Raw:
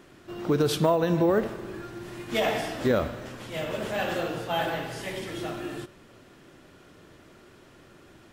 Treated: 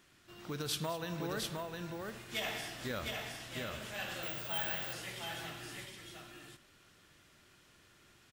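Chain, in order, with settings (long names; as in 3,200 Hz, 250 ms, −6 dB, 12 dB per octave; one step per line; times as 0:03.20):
guitar amp tone stack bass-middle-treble 5-5-5
multi-tap delay 210/709 ms −15.5/−3.5 dB
0:04.23–0:04.93: bad sample-rate conversion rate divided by 2×, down filtered, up zero stuff
level +1.5 dB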